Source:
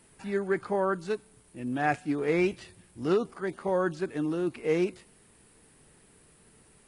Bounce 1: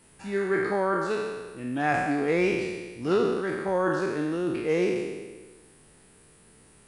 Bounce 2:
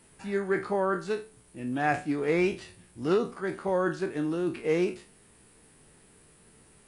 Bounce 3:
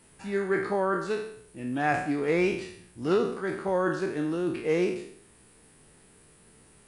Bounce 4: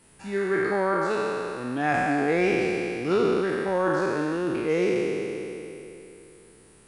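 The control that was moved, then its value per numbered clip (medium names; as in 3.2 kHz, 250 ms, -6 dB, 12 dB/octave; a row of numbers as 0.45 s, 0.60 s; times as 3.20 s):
spectral sustain, RT60: 1.4 s, 0.31 s, 0.65 s, 3.06 s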